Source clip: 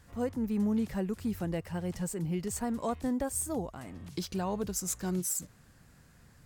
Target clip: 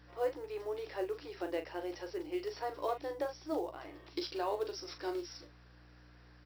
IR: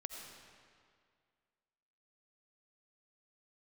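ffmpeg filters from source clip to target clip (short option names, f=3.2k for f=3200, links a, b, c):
-af "afftfilt=real='re*between(b*sr/4096,290,5800)':imag='im*between(b*sr/4096,290,5800)':win_size=4096:overlap=0.75,adynamicequalizer=threshold=0.00316:dfrequency=1400:dqfactor=0.78:tfrequency=1400:tqfactor=0.78:attack=5:release=100:ratio=0.375:range=1.5:mode=cutabove:tftype=bell,acrusher=bits=7:mode=log:mix=0:aa=0.000001,aeval=exprs='val(0)+0.00126*(sin(2*PI*60*n/s)+sin(2*PI*2*60*n/s)/2+sin(2*PI*3*60*n/s)/3+sin(2*PI*4*60*n/s)/4+sin(2*PI*5*60*n/s)/5)':c=same,aecho=1:1:14|40:0.335|0.355"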